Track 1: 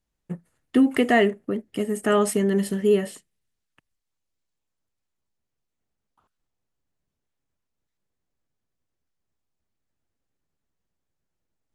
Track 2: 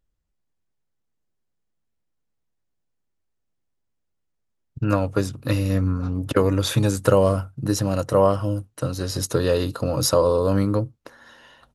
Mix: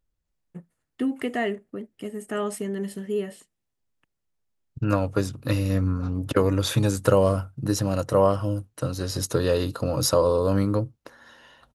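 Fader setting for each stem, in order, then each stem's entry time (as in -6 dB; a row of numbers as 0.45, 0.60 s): -8.0, -2.0 dB; 0.25, 0.00 s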